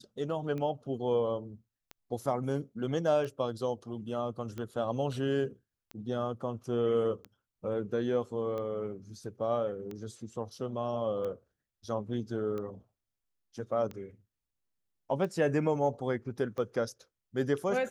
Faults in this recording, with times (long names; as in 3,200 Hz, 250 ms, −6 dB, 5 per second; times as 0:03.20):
scratch tick 45 rpm −27 dBFS